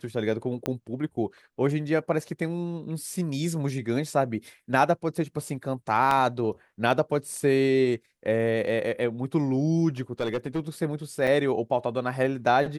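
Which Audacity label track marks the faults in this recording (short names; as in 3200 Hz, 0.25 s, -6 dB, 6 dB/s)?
0.660000	0.660000	pop -13 dBFS
6.110000	6.110000	gap 2.6 ms
10.200000	10.690000	clipped -22.5 dBFS
11.270000	11.280000	gap 5.7 ms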